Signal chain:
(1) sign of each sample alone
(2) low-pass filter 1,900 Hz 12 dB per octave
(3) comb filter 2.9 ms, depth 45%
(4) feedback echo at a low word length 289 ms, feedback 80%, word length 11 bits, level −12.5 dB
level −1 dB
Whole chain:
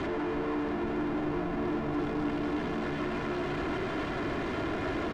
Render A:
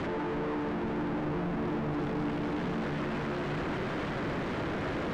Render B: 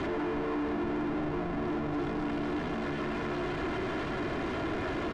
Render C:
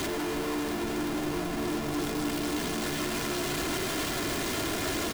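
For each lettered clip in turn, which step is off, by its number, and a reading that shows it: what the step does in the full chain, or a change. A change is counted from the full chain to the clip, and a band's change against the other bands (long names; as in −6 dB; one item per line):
3, 125 Hz band +4.0 dB
4, change in crest factor −4.0 dB
2, change in integrated loudness +2.0 LU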